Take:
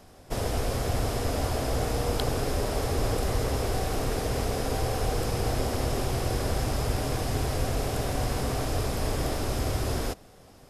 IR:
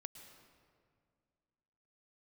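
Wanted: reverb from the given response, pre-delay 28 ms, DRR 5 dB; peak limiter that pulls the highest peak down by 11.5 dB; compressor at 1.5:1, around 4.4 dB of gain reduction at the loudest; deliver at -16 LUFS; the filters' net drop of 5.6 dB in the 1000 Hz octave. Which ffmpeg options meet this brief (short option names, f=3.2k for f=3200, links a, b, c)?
-filter_complex "[0:a]equalizer=f=1k:t=o:g=-8.5,acompressor=threshold=-35dB:ratio=1.5,alimiter=level_in=3.5dB:limit=-24dB:level=0:latency=1,volume=-3.5dB,asplit=2[a][b];[1:a]atrim=start_sample=2205,adelay=28[c];[b][c]afir=irnorm=-1:irlink=0,volume=0dB[d];[a][d]amix=inputs=2:normalize=0,volume=20.5dB"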